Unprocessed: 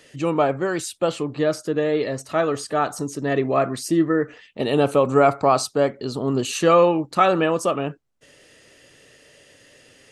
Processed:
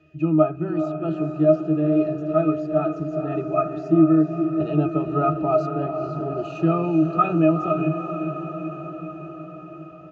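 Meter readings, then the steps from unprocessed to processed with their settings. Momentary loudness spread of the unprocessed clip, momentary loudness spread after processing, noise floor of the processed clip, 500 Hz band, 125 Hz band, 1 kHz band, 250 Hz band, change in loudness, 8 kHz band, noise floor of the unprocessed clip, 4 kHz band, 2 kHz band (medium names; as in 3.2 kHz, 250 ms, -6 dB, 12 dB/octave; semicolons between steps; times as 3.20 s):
8 LU, 15 LU, -39 dBFS, -3.0 dB, +4.0 dB, -4.0 dB, +4.0 dB, -1.0 dB, under -25 dB, -54 dBFS, under -15 dB, -10.0 dB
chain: resampled via 16 kHz; pitch-class resonator D#, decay 0.15 s; echo that smears into a reverb 460 ms, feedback 67%, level -8 dB; trim +9 dB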